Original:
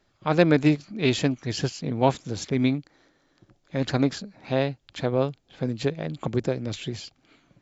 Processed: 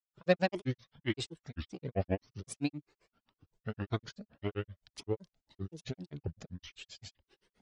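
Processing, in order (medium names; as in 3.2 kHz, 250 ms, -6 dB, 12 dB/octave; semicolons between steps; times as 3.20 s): granulator 100 ms, grains 7.7 per s, pitch spread up and down by 7 st; Shepard-style flanger rising 1.8 Hz; trim -3 dB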